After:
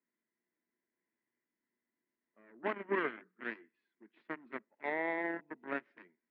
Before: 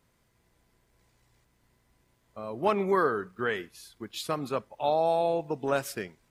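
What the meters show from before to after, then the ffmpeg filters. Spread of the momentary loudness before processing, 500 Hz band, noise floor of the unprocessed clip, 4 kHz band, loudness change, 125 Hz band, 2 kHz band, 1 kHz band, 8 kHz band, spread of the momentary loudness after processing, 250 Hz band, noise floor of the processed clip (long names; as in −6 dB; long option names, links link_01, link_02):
15 LU, −13.0 dB, −70 dBFS, −17.5 dB, −9.5 dB, −19.0 dB, −3.0 dB, −13.0 dB, below −35 dB, 12 LU, −8.5 dB, below −85 dBFS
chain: -af "aeval=exprs='0.251*(cos(1*acos(clip(val(0)/0.251,-1,1)))-cos(1*PI/2))+0.0447*(cos(7*acos(clip(val(0)/0.251,-1,1)))-cos(7*PI/2))+0.00631*(cos(8*acos(clip(val(0)/0.251,-1,1)))-cos(8*PI/2))':channel_layout=same,highpass=frequency=220:width=0.5412,highpass=frequency=220:width=1.3066,equalizer=frequency=230:width_type=q:width=4:gain=5,equalizer=frequency=330:width_type=q:width=4:gain=5,equalizer=frequency=520:width_type=q:width=4:gain=-6,equalizer=frequency=770:width_type=q:width=4:gain=-8,equalizer=frequency=1200:width_type=q:width=4:gain=-6,equalizer=frequency=1900:width_type=q:width=4:gain=7,lowpass=frequency=2200:width=0.5412,lowpass=frequency=2200:width=1.3066,volume=-7dB"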